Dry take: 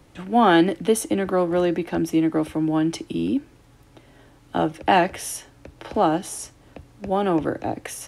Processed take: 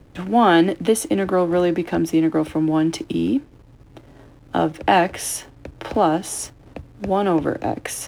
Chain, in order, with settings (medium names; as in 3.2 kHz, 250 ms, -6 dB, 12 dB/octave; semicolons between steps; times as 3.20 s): in parallel at +1 dB: compression, threshold -29 dBFS, peak gain reduction 15.5 dB; on the sum: hysteresis with a dead band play -41 dBFS